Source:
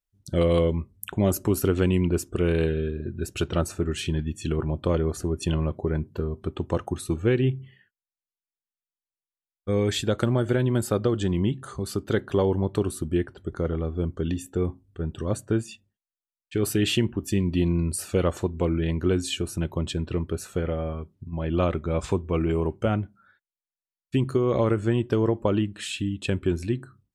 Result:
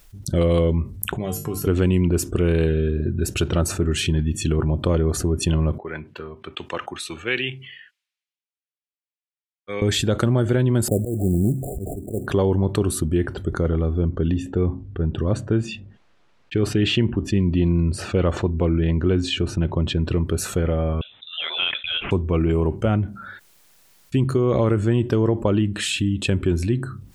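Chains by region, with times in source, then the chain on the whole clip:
1.17–1.67 s: hum notches 50/100/150/200/250/300/350 Hz + feedback comb 150 Hz, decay 0.22 s, harmonics odd, mix 90%
5.78–9.82 s: band-pass filter 2.5 kHz, Q 1.5 + three bands expanded up and down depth 100%
10.88–12.27 s: slow attack 230 ms + sample-rate reducer 2.4 kHz, jitter 20% + brick-wall FIR band-stop 760–7100 Hz
13.99–20.05 s: low-pass 3.8 kHz + tape noise reduction on one side only decoder only
21.01–22.11 s: high-pass 720 Hz + frequency inversion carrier 3.8 kHz
whole clip: bass shelf 250 Hz +4.5 dB; level flattener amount 50%

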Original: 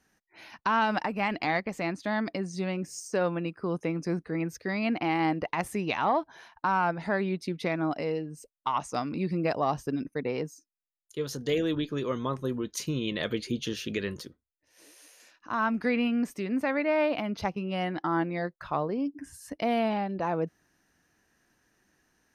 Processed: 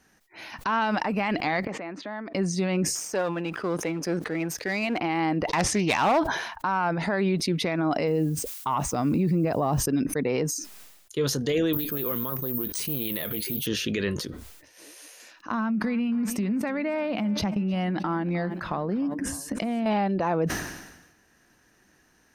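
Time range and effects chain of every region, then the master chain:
1.67–2.35 s: compression 2.5:1, threshold -43 dBFS + band-pass 250–2200 Hz
2.95–4.98 s: partial rectifier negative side -7 dB + high-pass 340 Hz 6 dB/octave
5.49–6.20 s: resonant low-pass 5.6 kHz, resonance Q 3.2 + hard clipper -22.5 dBFS + loudspeaker Doppler distortion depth 0.13 ms
8.07–9.79 s: high-pass 48 Hz + added noise violet -53 dBFS + tilt EQ -2.5 dB/octave
11.73–13.67 s: careless resampling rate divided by 3×, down filtered, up zero stuff + loudspeaker Doppler distortion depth 0.15 ms
15.51–19.86 s: peaking EQ 210 Hz +14.5 dB 0.43 oct + compression 12:1, threshold -31 dBFS + modulated delay 307 ms, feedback 48%, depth 61 cents, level -19.5 dB
whole clip: peak limiter -24.5 dBFS; decay stretcher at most 54 dB/s; trim +7.5 dB

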